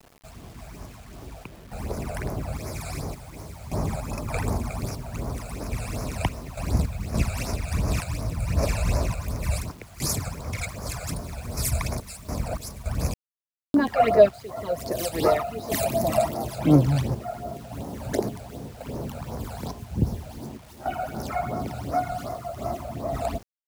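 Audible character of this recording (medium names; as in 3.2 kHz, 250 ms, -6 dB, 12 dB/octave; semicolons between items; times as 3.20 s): random-step tremolo, depth 85%; phasing stages 12, 2.7 Hz, lowest notch 310–3200 Hz; a quantiser's noise floor 10-bit, dither none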